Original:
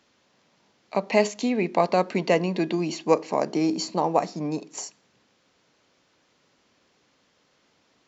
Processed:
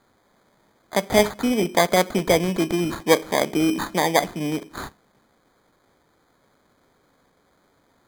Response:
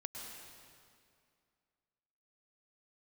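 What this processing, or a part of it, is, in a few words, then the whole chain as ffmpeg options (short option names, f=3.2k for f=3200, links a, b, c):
crushed at another speed: -af "asetrate=22050,aresample=44100,acrusher=samples=32:mix=1:aa=0.000001,asetrate=88200,aresample=44100,volume=3dB"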